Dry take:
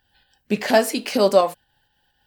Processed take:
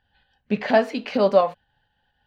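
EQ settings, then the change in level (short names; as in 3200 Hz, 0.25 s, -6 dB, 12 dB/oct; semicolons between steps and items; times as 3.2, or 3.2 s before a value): air absorption 250 m; bell 340 Hz -9.5 dB 0.3 oct; notch 5200 Hz, Q 14; 0.0 dB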